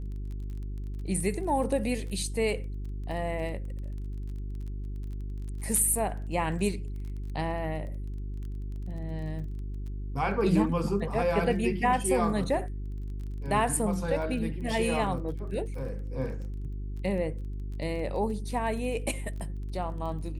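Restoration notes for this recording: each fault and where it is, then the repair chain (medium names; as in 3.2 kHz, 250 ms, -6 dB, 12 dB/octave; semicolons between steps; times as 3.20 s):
crackle 21 per s -39 dBFS
hum 50 Hz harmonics 8 -35 dBFS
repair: de-click; de-hum 50 Hz, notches 8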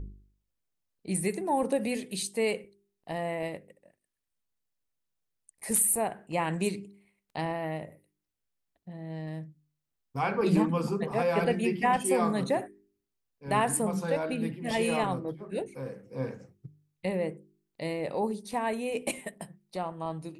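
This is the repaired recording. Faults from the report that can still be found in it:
nothing left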